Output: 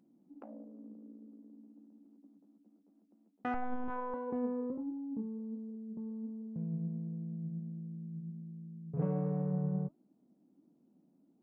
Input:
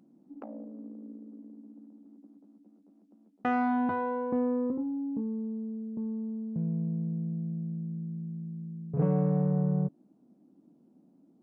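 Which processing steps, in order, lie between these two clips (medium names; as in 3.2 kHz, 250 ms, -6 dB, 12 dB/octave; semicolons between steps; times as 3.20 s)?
flange 1.4 Hz, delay 1.9 ms, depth 4.9 ms, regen +84%; 3.54–4.14 s: LPC vocoder at 8 kHz pitch kept; trim -2.5 dB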